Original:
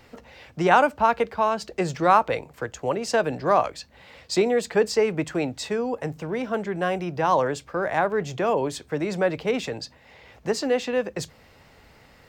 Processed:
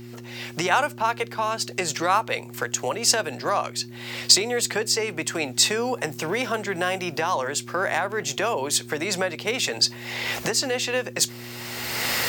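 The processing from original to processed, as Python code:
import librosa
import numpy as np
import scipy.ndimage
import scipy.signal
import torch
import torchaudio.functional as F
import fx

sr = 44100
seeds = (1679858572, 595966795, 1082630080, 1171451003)

y = fx.recorder_agc(x, sr, target_db=-10.5, rise_db_per_s=25.0, max_gain_db=30)
y = fx.tilt_eq(y, sr, slope=4.0)
y = fx.dmg_buzz(y, sr, base_hz=120.0, harmonics=3, level_db=-37.0, tilt_db=-1, odd_only=False)
y = y * librosa.db_to_amplitude(-3.5)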